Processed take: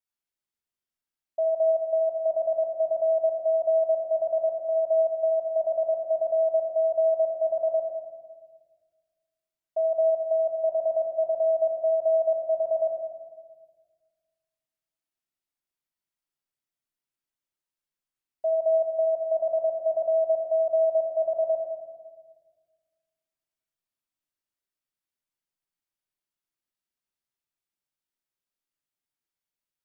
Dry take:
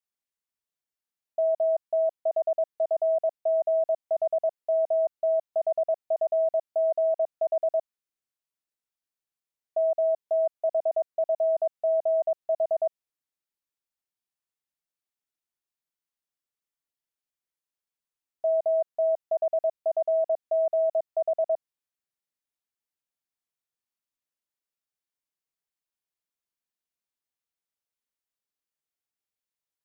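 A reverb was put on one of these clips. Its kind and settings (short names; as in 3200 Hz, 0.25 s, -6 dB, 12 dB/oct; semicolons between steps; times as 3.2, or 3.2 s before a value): shoebox room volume 1200 m³, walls mixed, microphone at 2.8 m; gain -5.5 dB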